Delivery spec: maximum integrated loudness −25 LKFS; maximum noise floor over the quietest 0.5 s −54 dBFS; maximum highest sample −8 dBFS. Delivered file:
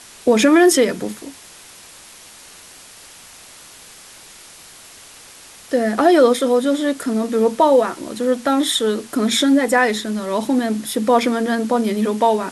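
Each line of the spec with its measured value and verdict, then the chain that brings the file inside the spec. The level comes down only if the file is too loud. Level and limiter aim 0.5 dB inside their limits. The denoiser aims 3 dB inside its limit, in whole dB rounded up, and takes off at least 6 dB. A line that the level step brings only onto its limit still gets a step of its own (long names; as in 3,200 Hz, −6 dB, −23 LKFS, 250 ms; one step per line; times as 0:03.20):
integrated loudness −17.0 LKFS: out of spec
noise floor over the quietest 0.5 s −42 dBFS: out of spec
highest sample −3.5 dBFS: out of spec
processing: broadband denoise 7 dB, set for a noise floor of −42 dBFS
level −8.5 dB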